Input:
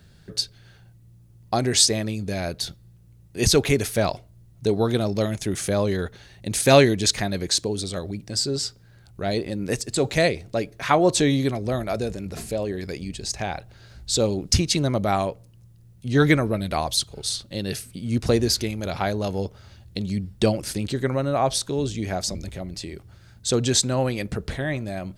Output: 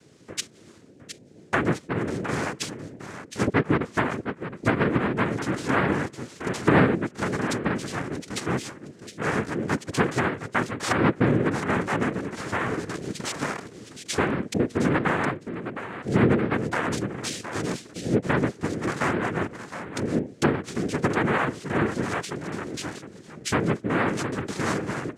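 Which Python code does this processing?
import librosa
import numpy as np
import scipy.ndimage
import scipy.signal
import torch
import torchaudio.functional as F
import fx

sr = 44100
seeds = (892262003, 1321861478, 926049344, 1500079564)

y = fx.env_lowpass_down(x, sr, base_hz=390.0, full_db=-16.0)
y = y + 10.0 ** (-10.0 / 20.0) * np.pad(y, (int(714 * sr / 1000.0), 0))[:len(y)]
y = fx.noise_vocoder(y, sr, seeds[0], bands=3)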